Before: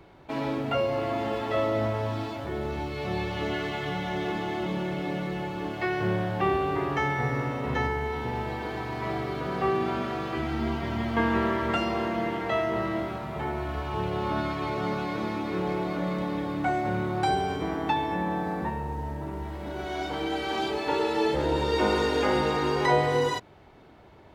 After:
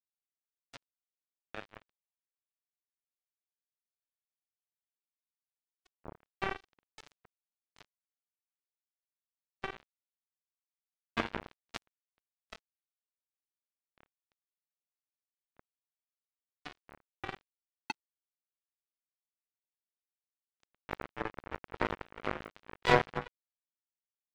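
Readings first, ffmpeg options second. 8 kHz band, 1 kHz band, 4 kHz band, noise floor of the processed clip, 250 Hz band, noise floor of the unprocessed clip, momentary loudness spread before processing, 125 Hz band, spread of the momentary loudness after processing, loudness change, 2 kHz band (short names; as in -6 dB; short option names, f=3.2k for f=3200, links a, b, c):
-13.0 dB, -14.0 dB, -12.5 dB, under -85 dBFS, -19.0 dB, -51 dBFS, 8 LU, -18.0 dB, 20 LU, -8.5 dB, -10.5 dB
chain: -af "afftfilt=real='re*gte(hypot(re,im),0.158)':imag='im*gte(hypot(re,im),0.158)':win_size=1024:overlap=0.75,acrusher=bits=2:mix=0:aa=0.5"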